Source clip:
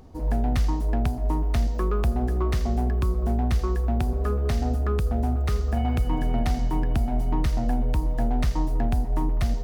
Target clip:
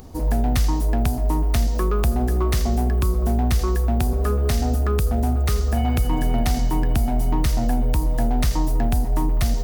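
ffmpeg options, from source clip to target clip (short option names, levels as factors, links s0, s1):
-filter_complex "[0:a]asplit=2[s0][s1];[s1]alimiter=limit=0.0631:level=0:latency=1,volume=1.12[s2];[s0][s2]amix=inputs=2:normalize=0,crystalizer=i=2:c=0"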